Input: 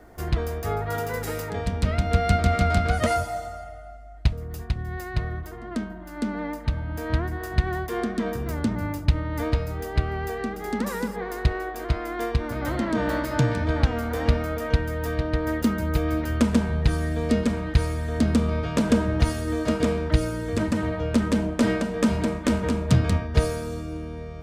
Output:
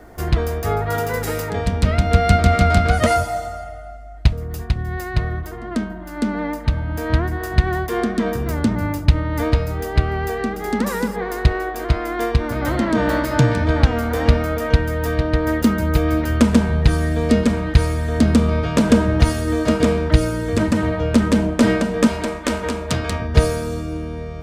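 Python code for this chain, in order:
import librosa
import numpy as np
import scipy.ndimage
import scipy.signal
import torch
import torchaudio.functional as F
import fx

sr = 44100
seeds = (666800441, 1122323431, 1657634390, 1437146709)

y = fx.peak_eq(x, sr, hz=130.0, db=-13.5, octaves=2.1, at=(22.07, 23.2))
y = y * 10.0 ** (6.5 / 20.0)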